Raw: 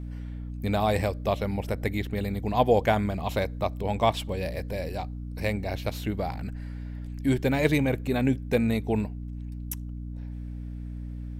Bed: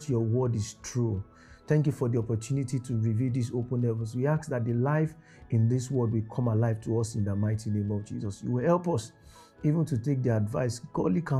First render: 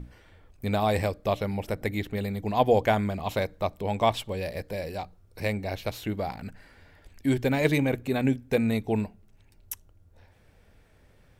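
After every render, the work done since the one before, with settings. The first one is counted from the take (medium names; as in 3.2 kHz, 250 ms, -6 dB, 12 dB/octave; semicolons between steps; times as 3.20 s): hum notches 60/120/180/240/300 Hz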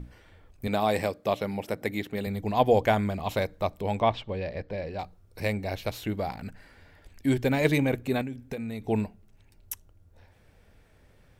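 0.67–2.27 s: high-pass 150 Hz; 4.00–4.99 s: distance through air 200 m; 8.21–8.85 s: compression 12:1, threshold -30 dBFS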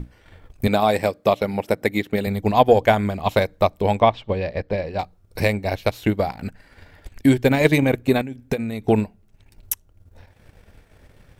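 transient shaper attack +7 dB, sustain -7 dB; in parallel at +2 dB: peak limiter -15.5 dBFS, peak gain reduction 11.5 dB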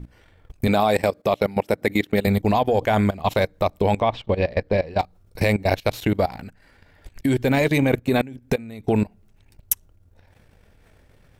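in parallel at 0 dB: peak limiter -11 dBFS, peak gain reduction 9.5 dB; on the sum: level held to a coarse grid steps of 18 dB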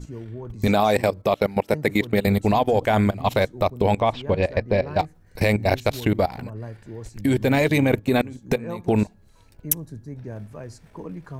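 add bed -9 dB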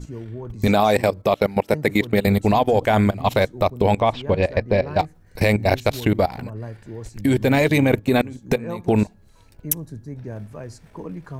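trim +2 dB; peak limiter -3 dBFS, peak gain reduction 2.5 dB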